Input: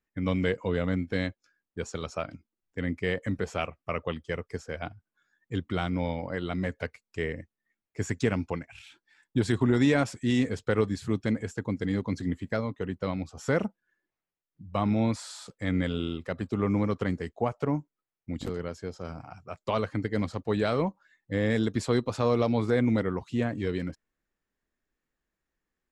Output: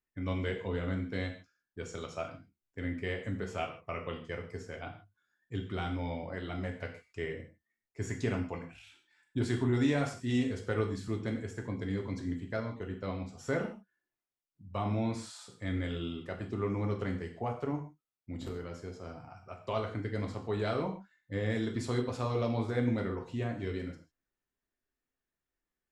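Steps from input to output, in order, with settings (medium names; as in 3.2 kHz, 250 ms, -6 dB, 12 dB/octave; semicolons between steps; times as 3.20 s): gated-style reverb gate 180 ms falling, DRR 1.5 dB; trim -8 dB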